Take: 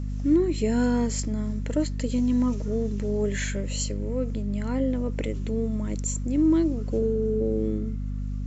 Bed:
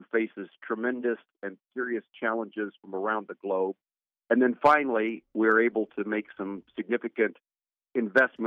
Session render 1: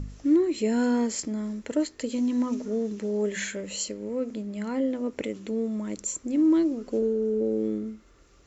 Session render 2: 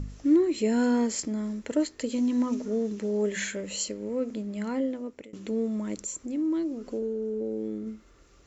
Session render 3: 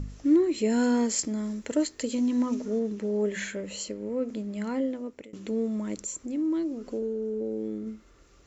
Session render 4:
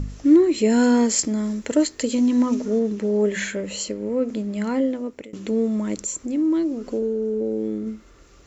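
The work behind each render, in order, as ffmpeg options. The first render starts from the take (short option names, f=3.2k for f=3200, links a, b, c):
-af "bandreject=f=50:t=h:w=4,bandreject=f=100:t=h:w=4,bandreject=f=150:t=h:w=4,bandreject=f=200:t=h:w=4,bandreject=f=250:t=h:w=4"
-filter_complex "[0:a]asettb=1/sr,asplit=3[a][b][c];[a]atrim=end=6.014[d];[b]atrim=start=6.01:end=7.87,asetpts=PTS-STARTPTS,afade=t=in:d=0.004:c=qsin,afade=t=out:st=1.856:d=0.004:c=qsin,acompressor=threshold=-37dB:ratio=1.5:attack=3.2:release=140:knee=1:detection=peak[e];[c]atrim=start=7.866[f];[d][e]acrossfade=d=0.004:c1=hsin:c2=qsin[g];[g][f]acrossfade=d=0.004:c1=qsin:c2=hsin,asplit=2[h][i];[h]atrim=end=5.33,asetpts=PTS-STARTPTS,afade=t=out:st=4.69:d=0.64:silence=0.0630957[j];[i]atrim=start=5.33,asetpts=PTS-STARTPTS,afade=t=in:d=0.004:c=hsin:silence=0.0630957[k];[j][k]concat=n=2:v=0:a=1"
-filter_complex "[0:a]asettb=1/sr,asplit=3[a][b][c];[a]atrim=end=0.704[d];[b]atrim=start=0.7:end=2.15,asetpts=PTS-STARTPTS,afade=t=in:d=0.004:c=qsin,afade=t=out:st=1.446:d=0.004:c=qsin,highshelf=f=5.3k:g=6.5[e];[c]atrim=start=2.146[f];[d][e]acrossfade=d=0.004:c1=hsin:c2=qsin[g];[g][f]acrossfade=d=0.004:c1=qsin:c2=hsin,asettb=1/sr,asplit=3[h][i][j];[h]atrim=end=2.794[k];[i]atrim=start=2.79:end=4.29,asetpts=PTS-STARTPTS,afade=t=in:d=0.004:c=qsin,afade=t=out:st=1.496:d=0.004:c=qsin,highshelf=f=3.4k:g=-6.5[l];[j]atrim=start=4.286[m];[k][l]acrossfade=d=0.004:c1=hsin:c2=qsin[n];[n][m]acrossfade=d=0.004:c1=qsin:c2=hsin"
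-af "volume=7dB"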